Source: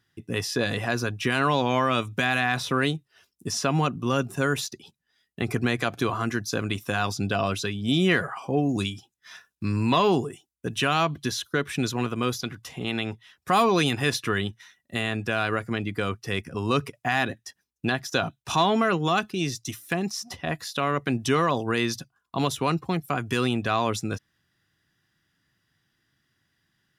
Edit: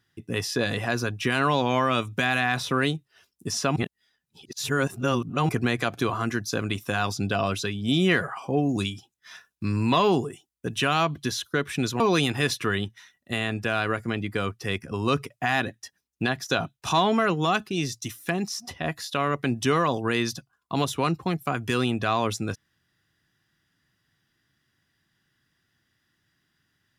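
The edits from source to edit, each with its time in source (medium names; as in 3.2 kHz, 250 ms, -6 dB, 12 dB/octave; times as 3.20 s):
3.76–5.49 s: reverse
12.00–13.63 s: delete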